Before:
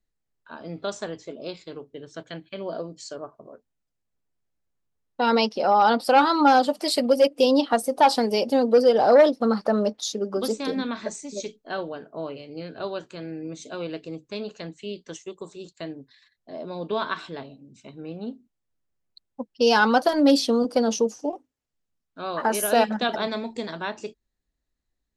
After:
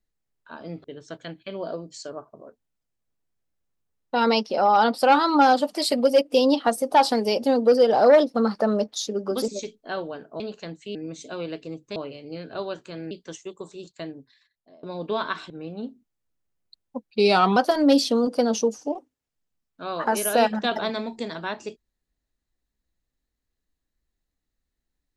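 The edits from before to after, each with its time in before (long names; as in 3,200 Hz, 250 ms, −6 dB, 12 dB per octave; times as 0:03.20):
0:00.84–0:01.90: remove
0:10.54–0:11.29: remove
0:12.21–0:13.36: swap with 0:14.37–0:14.92
0:15.82–0:16.64: fade out, to −23 dB
0:17.31–0:17.94: remove
0:19.51–0:19.94: play speed 87%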